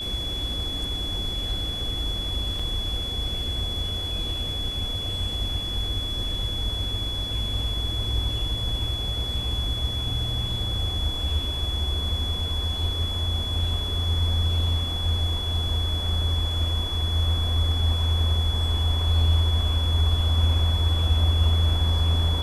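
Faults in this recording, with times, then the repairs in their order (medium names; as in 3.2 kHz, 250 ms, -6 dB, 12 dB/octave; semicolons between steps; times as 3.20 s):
whine 3.4 kHz -29 dBFS
2.59 s: dropout 4.3 ms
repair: band-stop 3.4 kHz, Q 30; interpolate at 2.59 s, 4.3 ms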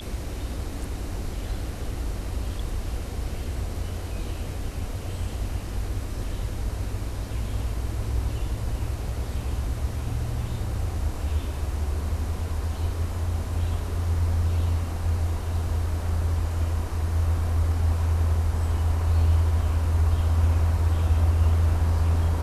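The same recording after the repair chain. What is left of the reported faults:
nothing left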